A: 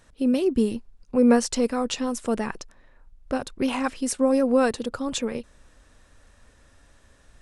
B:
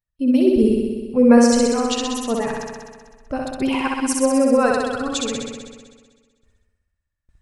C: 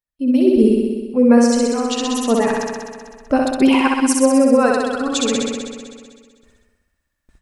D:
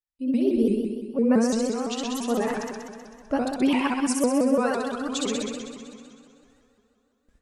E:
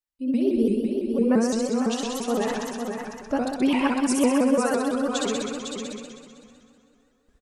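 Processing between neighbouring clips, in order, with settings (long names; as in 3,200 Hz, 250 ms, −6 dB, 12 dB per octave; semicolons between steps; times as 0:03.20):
spectral dynamics exaggerated over time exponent 1.5; noise gate with hold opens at −54 dBFS; flutter between parallel walls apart 10.9 metres, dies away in 1.5 s; level +5 dB
automatic gain control gain up to 14 dB; low shelf with overshoot 170 Hz −8 dB, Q 1.5; level −2 dB
dense smooth reverb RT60 3.5 s, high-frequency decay 0.8×, DRR 15.5 dB; pitch modulation by a square or saw wave saw up 5.9 Hz, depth 160 cents; level −9 dB
single-tap delay 503 ms −6 dB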